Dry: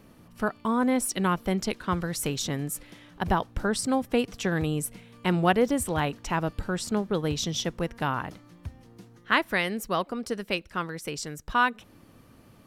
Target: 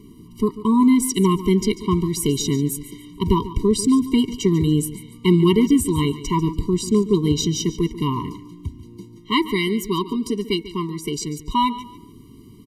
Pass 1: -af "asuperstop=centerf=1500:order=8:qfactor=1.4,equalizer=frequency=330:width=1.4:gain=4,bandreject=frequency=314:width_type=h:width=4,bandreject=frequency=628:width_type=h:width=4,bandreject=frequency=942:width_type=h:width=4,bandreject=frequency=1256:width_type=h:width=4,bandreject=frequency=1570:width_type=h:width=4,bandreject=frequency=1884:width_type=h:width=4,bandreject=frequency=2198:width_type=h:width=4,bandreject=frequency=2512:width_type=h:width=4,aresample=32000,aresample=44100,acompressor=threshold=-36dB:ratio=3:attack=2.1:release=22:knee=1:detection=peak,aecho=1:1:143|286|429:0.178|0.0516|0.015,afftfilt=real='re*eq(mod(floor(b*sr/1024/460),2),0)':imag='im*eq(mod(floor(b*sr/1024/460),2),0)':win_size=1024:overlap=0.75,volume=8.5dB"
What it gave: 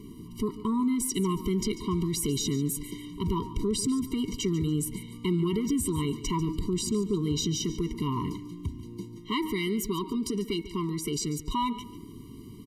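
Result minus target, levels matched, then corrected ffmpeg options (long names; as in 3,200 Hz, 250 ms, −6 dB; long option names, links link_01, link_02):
downward compressor: peak gain reduction +15 dB
-af "asuperstop=centerf=1500:order=8:qfactor=1.4,equalizer=frequency=330:width=1.4:gain=4,bandreject=frequency=314:width_type=h:width=4,bandreject=frequency=628:width_type=h:width=4,bandreject=frequency=942:width_type=h:width=4,bandreject=frequency=1256:width_type=h:width=4,bandreject=frequency=1570:width_type=h:width=4,bandreject=frequency=1884:width_type=h:width=4,bandreject=frequency=2198:width_type=h:width=4,bandreject=frequency=2512:width_type=h:width=4,aresample=32000,aresample=44100,aecho=1:1:143|286|429:0.178|0.0516|0.015,afftfilt=real='re*eq(mod(floor(b*sr/1024/460),2),0)':imag='im*eq(mod(floor(b*sr/1024/460),2),0)':win_size=1024:overlap=0.75,volume=8.5dB"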